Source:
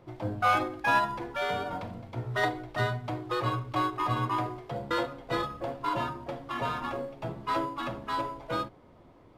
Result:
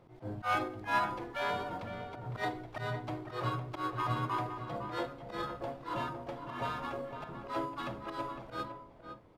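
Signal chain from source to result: slow attack 105 ms; harmony voices +4 st -14 dB; echo from a far wall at 87 m, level -8 dB; trim -5 dB

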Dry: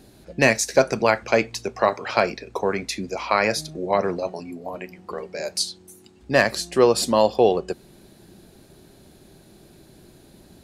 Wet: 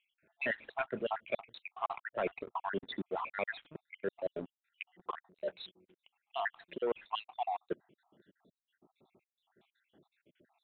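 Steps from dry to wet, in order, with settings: random holes in the spectrogram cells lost 74%; high-pass 120 Hz 12 dB/octave; bass shelf 190 Hz -9.5 dB; waveshaping leveller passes 2; reverse; compression 4:1, threshold -27 dBFS, peak gain reduction 14.5 dB; reverse; resampled via 8 kHz; trim -6.5 dB

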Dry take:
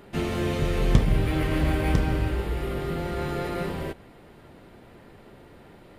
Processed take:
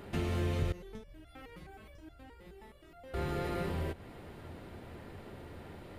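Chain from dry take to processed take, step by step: peaking EQ 85 Hz +9 dB 0.43 oct; compression 2:1, threshold -37 dBFS, peak gain reduction 15 dB; 0.72–3.14 s: resonator arpeggio 9.5 Hz 180–690 Hz

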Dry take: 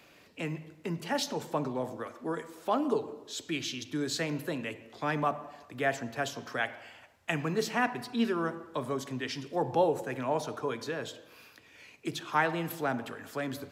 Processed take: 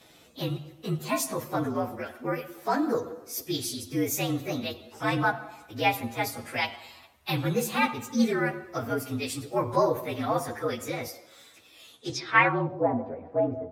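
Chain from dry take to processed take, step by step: frequency axis rescaled in octaves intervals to 116%; low-pass sweep 14 kHz -> 650 Hz, 11.89–12.72 s; 11.09–12.10 s: bass shelf 190 Hz -9.5 dB; trim +6.5 dB

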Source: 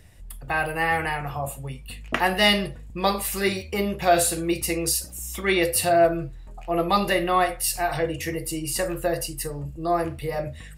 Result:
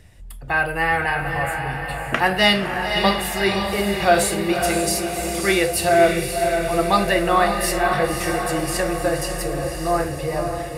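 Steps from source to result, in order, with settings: treble shelf 11 kHz -8.5 dB; on a send: echo that smears into a reverb 551 ms, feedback 59%, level -5 dB; on the sum: dynamic bell 1.5 kHz, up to +5 dB, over -41 dBFS, Q 5; trim +2.5 dB

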